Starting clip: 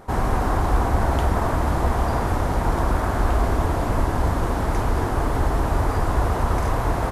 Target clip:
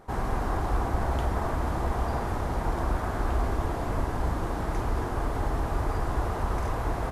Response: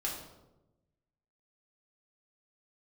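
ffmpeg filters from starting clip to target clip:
-filter_complex "[0:a]asplit=2[link_01][link_02];[1:a]atrim=start_sample=2205,lowpass=8100[link_03];[link_02][link_03]afir=irnorm=-1:irlink=0,volume=-11.5dB[link_04];[link_01][link_04]amix=inputs=2:normalize=0,volume=-9dB"

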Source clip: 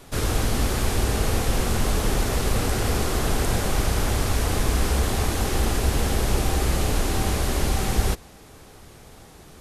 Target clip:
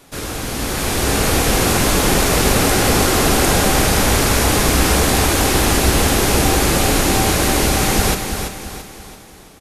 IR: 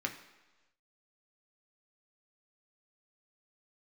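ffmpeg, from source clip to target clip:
-filter_complex "[0:a]lowshelf=frequency=82:gain=-8.5,dynaudnorm=framelen=190:gausssize=9:maxgain=11.5dB,aecho=1:1:336|672|1008|1344|1680:0.447|0.183|0.0751|0.0308|0.0126,asplit=2[link_01][link_02];[1:a]atrim=start_sample=2205,highshelf=frequency=4300:gain=10[link_03];[link_02][link_03]afir=irnorm=-1:irlink=0,volume=-12dB[link_04];[link_01][link_04]amix=inputs=2:normalize=0,volume=-1.5dB"

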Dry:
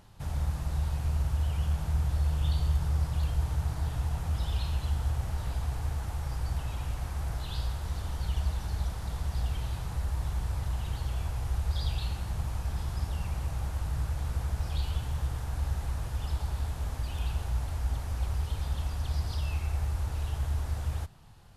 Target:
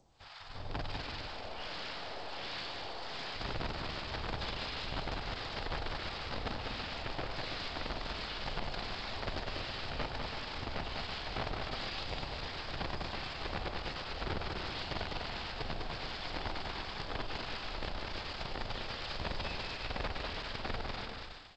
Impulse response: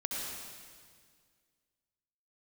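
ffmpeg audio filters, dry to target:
-filter_complex "[0:a]asettb=1/sr,asplit=3[link_01][link_02][link_03];[link_01]atrim=end=1.264[link_04];[link_02]atrim=start=1.26:end=3.34,asetpts=PTS-STARTPTS,afade=type=in:duration=0.004:curve=qsin,afade=type=out:start_time=2.076:duration=0.004:curve=qsin,highpass=530[link_05];[link_03]atrim=start=3.336[link_06];[link_04][link_05]acrossfade=duration=0.004:curve1=hsin:curve2=qsin[link_07];[link_07][link_06]acrossfade=duration=0.004:curve1=qsin:curve2=hsin,aemphasis=mode=production:type=bsi,dynaudnorm=framelen=450:gausssize=3:maxgain=11dB,afreqshift=-53,aeval=exprs='(tanh(25.1*val(0)+0.55)-tanh(0.55))/25.1':channel_layout=same,acrossover=split=870[link_08][link_09];[link_08]aeval=exprs='val(0)*(1-1/2+1/2*cos(2*PI*1.4*n/s))':channel_layout=same[link_10];[link_09]aeval=exprs='val(0)*(1-1/2-1/2*cos(2*PI*1.4*n/s))':channel_layout=same[link_11];[link_10][link_11]amix=inputs=2:normalize=0,aeval=exprs='(mod(37.6*val(0)+1,2)-1)/37.6':channel_layout=same,aecho=1:1:200|330|414.5|469.4|505.1:0.631|0.398|0.251|0.158|0.1,aresample=11025,aresample=44100" -ar 16000 -c:a g722

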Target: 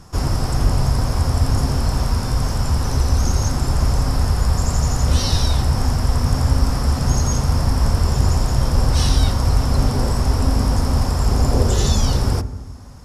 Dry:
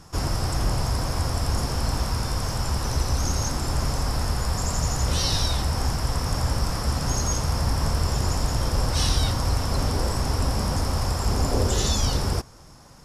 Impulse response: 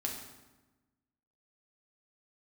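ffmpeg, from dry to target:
-filter_complex "[0:a]asplit=2[link_01][link_02];[link_02]lowshelf=frequency=310:gain=11[link_03];[1:a]atrim=start_sample=2205,lowpass=2100[link_04];[link_03][link_04]afir=irnorm=-1:irlink=0,volume=-11dB[link_05];[link_01][link_05]amix=inputs=2:normalize=0,volume=1.5dB"

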